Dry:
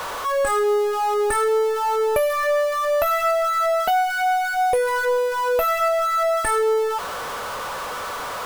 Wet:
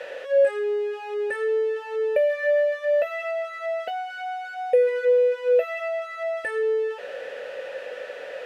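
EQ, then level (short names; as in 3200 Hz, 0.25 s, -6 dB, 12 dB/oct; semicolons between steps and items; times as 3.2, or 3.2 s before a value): vowel filter e; +6.0 dB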